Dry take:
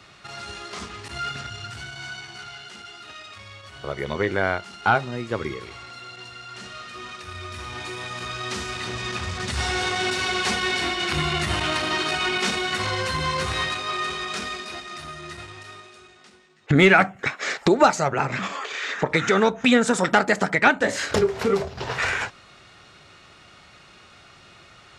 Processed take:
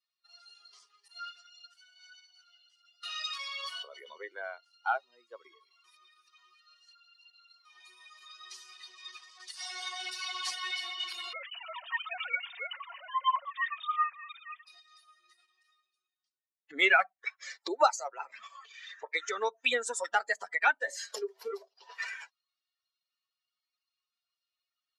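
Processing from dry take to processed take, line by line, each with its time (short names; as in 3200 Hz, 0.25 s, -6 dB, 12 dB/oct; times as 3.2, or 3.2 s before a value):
3.03–4.18 fast leveller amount 100%
5.84–7.65 reverse
11.33–14.67 sine-wave speech
whole clip: per-bin expansion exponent 2; Bessel high-pass 670 Hz, order 6; gain -3 dB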